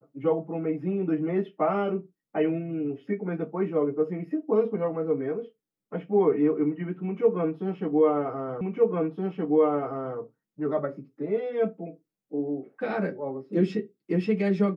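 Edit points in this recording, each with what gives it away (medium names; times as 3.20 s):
8.61 s: repeat of the last 1.57 s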